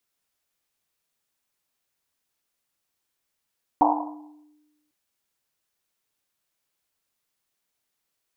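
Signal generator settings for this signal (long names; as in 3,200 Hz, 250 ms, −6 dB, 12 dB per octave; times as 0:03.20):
drum after Risset, pitch 300 Hz, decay 1.24 s, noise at 840 Hz, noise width 340 Hz, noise 65%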